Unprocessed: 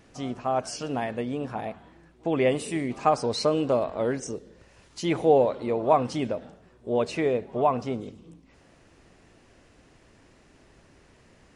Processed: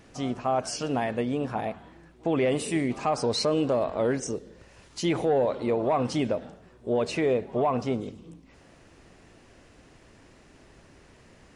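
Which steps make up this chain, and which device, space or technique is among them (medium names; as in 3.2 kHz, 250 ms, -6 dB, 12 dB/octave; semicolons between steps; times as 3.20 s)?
soft clipper into limiter (saturation -10.5 dBFS, distortion -22 dB; peak limiter -19 dBFS, peak gain reduction 7.5 dB); trim +2.5 dB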